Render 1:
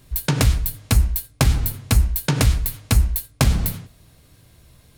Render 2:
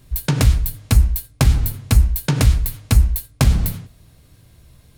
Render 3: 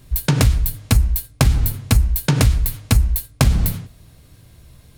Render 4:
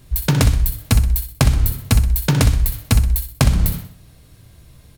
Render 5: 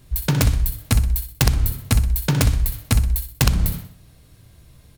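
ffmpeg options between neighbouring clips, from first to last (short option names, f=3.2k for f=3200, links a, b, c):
-af "lowshelf=f=200:g=5,volume=-1dB"
-af "acompressor=threshold=-12dB:ratio=6,volume=2.5dB"
-af "aecho=1:1:63|126|189|252:0.316|0.12|0.0457|0.0174"
-af "aeval=exprs='(mod(1.5*val(0)+1,2)-1)/1.5':c=same,volume=-3dB"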